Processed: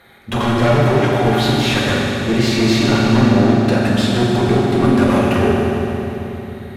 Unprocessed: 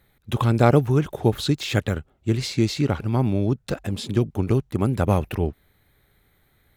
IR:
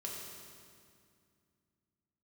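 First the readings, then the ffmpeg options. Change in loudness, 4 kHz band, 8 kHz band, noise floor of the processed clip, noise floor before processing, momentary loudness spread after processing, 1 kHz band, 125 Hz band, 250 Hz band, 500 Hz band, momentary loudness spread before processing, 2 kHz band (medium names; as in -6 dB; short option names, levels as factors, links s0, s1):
+7.5 dB, +11.0 dB, +8.0 dB, -32 dBFS, -64 dBFS, 9 LU, +9.5 dB, +4.5 dB, +10.0 dB, +8.5 dB, 10 LU, +13.0 dB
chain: -filter_complex "[0:a]aeval=exprs='clip(val(0),-1,0.106)':c=same,asplit=2[s0][s1];[s1]highpass=f=720:p=1,volume=50.1,asoftclip=type=tanh:threshold=0.631[s2];[s0][s2]amix=inputs=2:normalize=0,lowpass=f=1900:p=1,volume=0.501[s3];[1:a]atrim=start_sample=2205,asetrate=26460,aresample=44100[s4];[s3][s4]afir=irnorm=-1:irlink=0,volume=0.596"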